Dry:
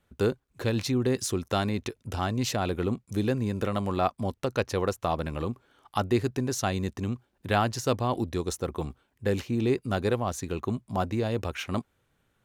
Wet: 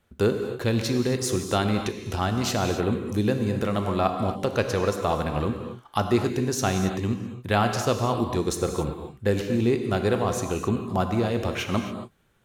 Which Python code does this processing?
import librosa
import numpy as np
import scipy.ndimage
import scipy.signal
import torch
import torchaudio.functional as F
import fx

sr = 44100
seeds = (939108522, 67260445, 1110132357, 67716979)

p1 = fx.rider(x, sr, range_db=3, speed_s=0.5)
p2 = x + F.gain(torch.from_numpy(p1), -1.5).numpy()
p3 = fx.rev_gated(p2, sr, seeds[0], gate_ms=300, shape='flat', drr_db=5.0)
y = F.gain(torch.from_numpy(p3), -2.5).numpy()